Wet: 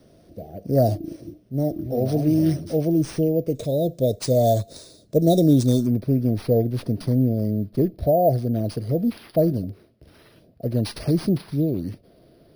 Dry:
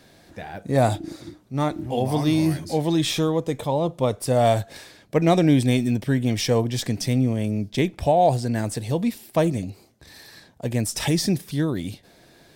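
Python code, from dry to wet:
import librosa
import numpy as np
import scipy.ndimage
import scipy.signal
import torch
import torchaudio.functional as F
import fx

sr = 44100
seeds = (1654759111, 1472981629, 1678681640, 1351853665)

y = fx.cheby1_bandstop(x, sr, low_hz=670.0, high_hz=fx.steps((0.0, 8900.0), (3.54, 3700.0), (5.85, 9800.0)), order=5)
y = np.repeat(y[::3], 3)[:len(y)]
y = F.gain(torch.from_numpy(y), 2.0).numpy()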